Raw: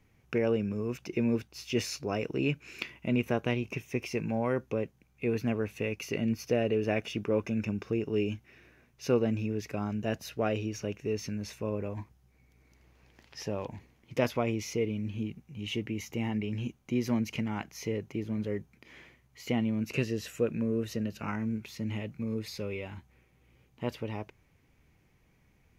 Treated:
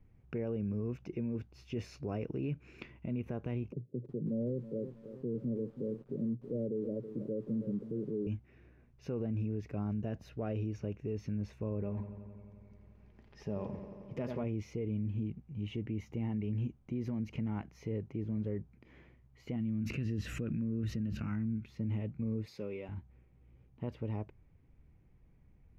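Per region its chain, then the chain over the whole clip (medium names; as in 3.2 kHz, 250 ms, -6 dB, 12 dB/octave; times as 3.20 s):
3.72–8.27 s: Chebyshev band-pass 120–570 Hz, order 5 + bit-crushed delay 322 ms, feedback 55%, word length 8-bit, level -13.5 dB
11.82–14.44 s: comb 4.9 ms, depth 37% + feedback echo behind a low-pass 88 ms, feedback 80%, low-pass 3.5 kHz, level -11 dB
19.56–21.70 s: high-order bell 630 Hz -9 dB + swell ahead of each attack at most 21 dB/s
22.47–22.89 s: high-pass 220 Hz + treble shelf 4.2 kHz +6 dB
whole clip: tilt EQ -3 dB/octave; peak limiter -21.5 dBFS; treble shelf 4 kHz -7 dB; trim -7 dB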